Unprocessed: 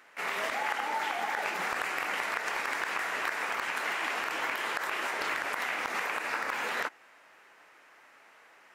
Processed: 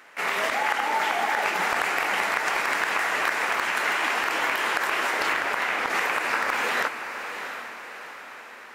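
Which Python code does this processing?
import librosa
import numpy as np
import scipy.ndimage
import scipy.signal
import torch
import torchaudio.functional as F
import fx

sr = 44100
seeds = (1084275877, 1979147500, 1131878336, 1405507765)

p1 = fx.high_shelf(x, sr, hz=fx.line((5.32, 8000.0), (5.89, 4600.0)), db=-10.5, at=(5.32, 5.89), fade=0.02)
p2 = p1 + fx.echo_diffused(p1, sr, ms=713, feedback_pct=49, wet_db=-9.0, dry=0)
y = p2 * librosa.db_to_amplitude(7.0)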